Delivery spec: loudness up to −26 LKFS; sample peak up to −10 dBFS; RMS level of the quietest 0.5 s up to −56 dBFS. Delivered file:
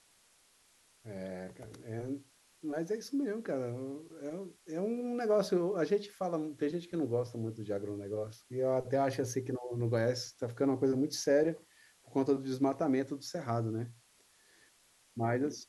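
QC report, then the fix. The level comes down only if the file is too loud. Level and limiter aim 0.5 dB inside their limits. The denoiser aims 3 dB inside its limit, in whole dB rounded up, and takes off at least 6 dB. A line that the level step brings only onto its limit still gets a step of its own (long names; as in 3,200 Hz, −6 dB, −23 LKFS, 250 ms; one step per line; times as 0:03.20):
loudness −34.5 LKFS: in spec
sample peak −18.0 dBFS: in spec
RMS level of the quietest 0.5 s −67 dBFS: in spec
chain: no processing needed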